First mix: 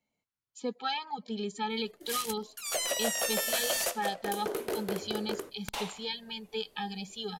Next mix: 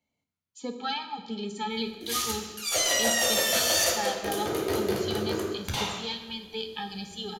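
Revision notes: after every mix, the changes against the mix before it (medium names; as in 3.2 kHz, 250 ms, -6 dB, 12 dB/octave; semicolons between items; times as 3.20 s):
reverb: on, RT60 1.0 s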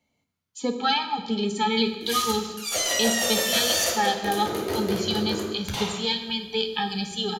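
speech +8.5 dB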